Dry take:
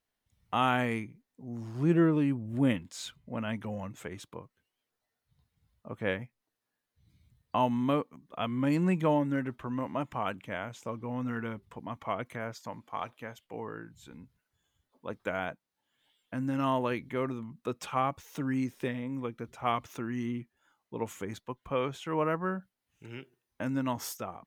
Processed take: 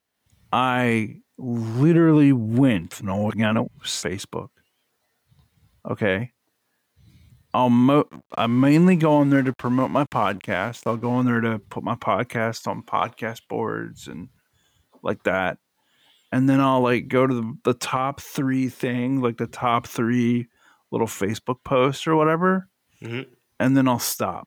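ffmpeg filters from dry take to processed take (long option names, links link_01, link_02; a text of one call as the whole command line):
ffmpeg -i in.wav -filter_complex "[0:a]asplit=3[link_01][link_02][link_03];[link_01]afade=type=out:start_time=8.08:duration=0.02[link_04];[link_02]aeval=exprs='sgn(val(0))*max(abs(val(0))-0.0015,0)':channel_layout=same,afade=type=in:start_time=8.08:duration=0.02,afade=type=out:start_time=11.22:duration=0.02[link_05];[link_03]afade=type=in:start_time=11.22:duration=0.02[link_06];[link_04][link_05][link_06]amix=inputs=3:normalize=0,asettb=1/sr,asplit=3[link_07][link_08][link_09];[link_07]atrim=end=17.964[link_10];[link_08]atrim=start=17.96:end=19.11,asetpts=PTS-STARTPTS,afade=type=in:duration=0.004:curve=qsin,afade=type=out:start_time=1.146:duration=0.004:curve=qsin,acompressor=threshold=-33dB:ratio=4:attack=3.2:release=140:knee=1:detection=peak[link_11];[link_09]atrim=start=19.106[link_12];[link_10][link_11]acrossfade=duration=0.004:curve1=hsin:curve2=qsin[link_13];[link_13][link_12]acrossfade=duration=0.004:curve1=qsin:curve2=hsin,asplit=3[link_14][link_15][link_16];[link_14]atrim=end=2.922[link_17];[link_15]atrim=start=2.918:end=4.032,asetpts=PTS-STARTPTS,areverse[link_18];[link_16]atrim=start=4.028[link_19];[link_17][link_18]acrossfade=duration=0.004:curve1=hsin:curve2=hsin[link_20];[link_20][link_19]acrossfade=duration=0.004:curve1=hsin:curve2=hsin,highpass=75,dynaudnorm=framelen=130:gausssize=3:maxgain=8.5dB,alimiter=level_in=12.5dB:limit=-1dB:release=50:level=0:latency=1,volume=-7dB" out.wav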